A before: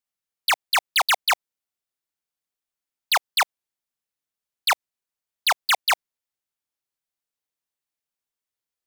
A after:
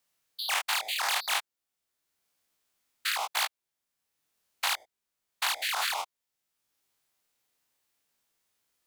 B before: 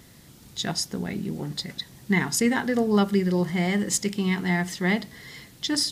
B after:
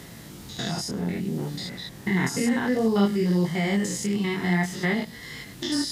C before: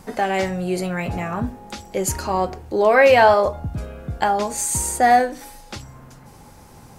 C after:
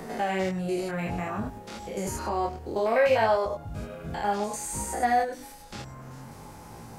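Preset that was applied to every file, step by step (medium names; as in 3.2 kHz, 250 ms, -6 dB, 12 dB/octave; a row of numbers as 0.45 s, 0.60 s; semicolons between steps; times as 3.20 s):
spectrogram pixelated in time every 100 ms; chorus 0.59 Hz, delay 17.5 ms, depth 7.2 ms; three bands compressed up and down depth 40%; peak normalisation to -12 dBFS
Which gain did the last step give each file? +4.5 dB, +4.5 dB, -3.0 dB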